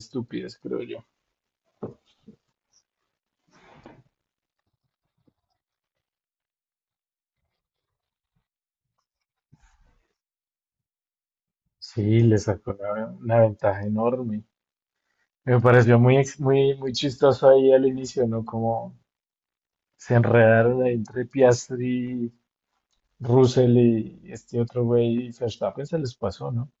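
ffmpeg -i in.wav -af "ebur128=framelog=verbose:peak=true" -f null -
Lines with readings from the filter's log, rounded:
Integrated loudness:
  I:         -21.6 LUFS
  Threshold: -33.0 LUFS
Loudness range:
  LRA:         8.1 LU
  Threshold: -44.0 LUFS
  LRA low:   -27.3 LUFS
  LRA high:  -19.3 LUFS
True peak:
  Peak:       -4.1 dBFS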